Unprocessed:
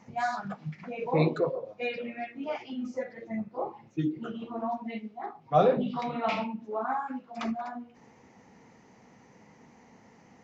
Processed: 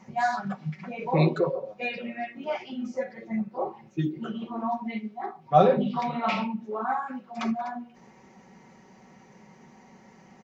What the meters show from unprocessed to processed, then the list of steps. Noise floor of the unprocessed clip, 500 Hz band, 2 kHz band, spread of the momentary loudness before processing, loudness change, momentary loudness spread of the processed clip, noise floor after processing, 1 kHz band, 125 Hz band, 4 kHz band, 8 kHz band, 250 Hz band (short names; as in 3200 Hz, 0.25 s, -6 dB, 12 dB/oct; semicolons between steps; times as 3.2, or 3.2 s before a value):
-58 dBFS, +2.0 dB, +3.5 dB, 13 LU, +3.0 dB, 13 LU, -55 dBFS, +4.0 dB, +4.5 dB, +3.0 dB, n/a, +3.5 dB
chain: comb 5.3 ms, depth 59%; gain +2 dB